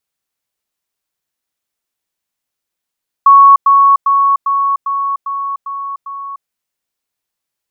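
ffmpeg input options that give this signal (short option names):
-f lavfi -i "aevalsrc='pow(10,(-1.5-3*floor(t/0.4))/20)*sin(2*PI*1110*t)*clip(min(mod(t,0.4),0.3-mod(t,0.4))/0.005,0,1)':d=3.2:s=44100"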